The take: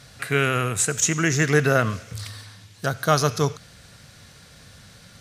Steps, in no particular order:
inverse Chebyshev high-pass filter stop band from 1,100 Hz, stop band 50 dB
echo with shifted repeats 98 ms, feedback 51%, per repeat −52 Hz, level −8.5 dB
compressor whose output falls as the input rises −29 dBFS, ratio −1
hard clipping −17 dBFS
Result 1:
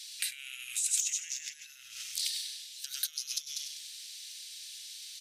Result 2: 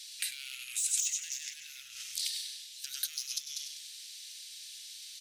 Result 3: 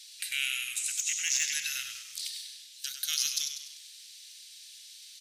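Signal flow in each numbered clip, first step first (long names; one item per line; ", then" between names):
echo with shifted repeats, then compressor whose output falls as the input rises, then inverse Chebyshev high-pass filter, then hard clipping
echo with shifted repeats, then hard clipping, then compressor whose output falls as the input rises, then inverse Chebyshev high-pass filter
inverse Chebyshev high-pass filter, then compressor whose output falls as the input rises, then echo with shifted repeats, then hard clipping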